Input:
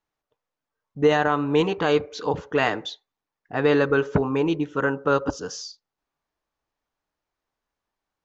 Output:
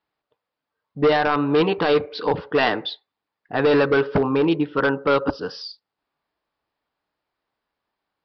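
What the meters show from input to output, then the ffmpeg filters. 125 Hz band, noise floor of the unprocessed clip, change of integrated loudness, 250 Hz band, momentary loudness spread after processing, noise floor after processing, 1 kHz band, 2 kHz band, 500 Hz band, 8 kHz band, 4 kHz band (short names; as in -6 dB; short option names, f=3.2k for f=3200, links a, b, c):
0.0 dB, under -85 dBFS, +2.5 dB, +2.5 dB, 13 LU, -85 dBFS, +2.5 dB, +2.0 dB, +2.5 dB, n/a, +4.0 dB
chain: -af "highpass=f=120:p=1,aresample=11025,asoftclip=type=hard:threshold=-17dB,aresample=44100,volume=4.5dB"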